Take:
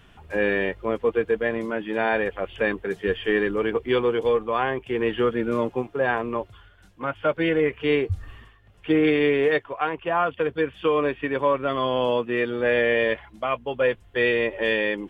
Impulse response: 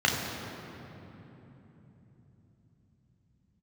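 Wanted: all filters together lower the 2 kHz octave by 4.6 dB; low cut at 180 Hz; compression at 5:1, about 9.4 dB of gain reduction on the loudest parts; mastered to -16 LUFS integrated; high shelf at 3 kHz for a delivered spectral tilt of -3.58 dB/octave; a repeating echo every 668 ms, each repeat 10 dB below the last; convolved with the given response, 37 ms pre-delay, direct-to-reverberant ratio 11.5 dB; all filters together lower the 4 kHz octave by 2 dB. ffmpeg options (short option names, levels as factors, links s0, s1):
-filter_complex "[0:a]highpass=180,equalizer=f=2000:t=o:g=-7,highshelf=f=3000:g=7,equalizer=f=4000:t=o:g=-4.5,acompressor=threshold=0.0398:ratio=5,aecho=1:1:668|1336|2004|2672:0.316|0.101|0.0324|0.0104,asplit=2[s0][s1];[1:a]atrim=start_sample=2205,adelay=37[s2];[s1][s2]afir=irnorm=-1:irlink=0,volume=0.0473[s3];[s0][s3]amix=inputs=2:normalize=0,volume=6.31"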